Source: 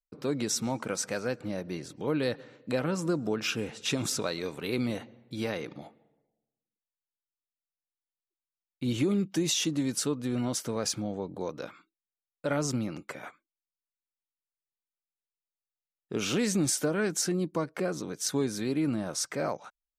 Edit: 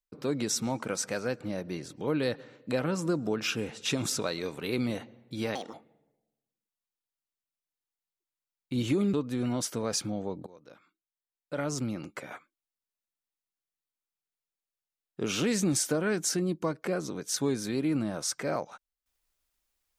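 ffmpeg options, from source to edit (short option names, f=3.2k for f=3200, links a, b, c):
-filter_complex "[0:a]asplit=5[a][b][c][d][e];[a]atrim=end=5.554[f];[b]atrim=start=5.55:end=5.84,asetpts=PTS-STARTPTS,asetrate=68796,aresample=44100,atrim=end_sample=8198,asetpts=PTS-STARTPTS[g];[c]atrim=start=5.836:end=9.242[h];[d]atrim=start=10.058:end=11.39,asetpts=PTS-STARTPTS,afade=t=out:st=1.328:d=0.004:c=hsin:silence=0.0794328[i];[e]atrim=start=11.39,asetpts=PTS-STARTPTS,afade=t=in:d=1.75:silence=0.0794328[j];[f][g]acrossfade=d=0.004:c1=hsin:c2=hsin[k];[k][h]acrossfade=d=0.004:c1=hsin:c2=hsin[l];[i][j]concat=n=2:v=0:a=1[m];[l][m]acrossfade=d=0.004:c1=hsin:c2=hsin"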